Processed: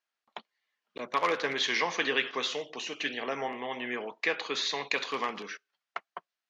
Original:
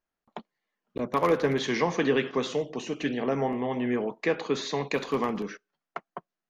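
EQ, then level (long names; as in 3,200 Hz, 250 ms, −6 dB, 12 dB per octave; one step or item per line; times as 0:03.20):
high-pass filter 1,100 Hz 6 dB per octave
low-pass filter 4,200 Hz 12 dB per octave
high-shelf EQ 2,300 Hz +11 dB
0.0 dB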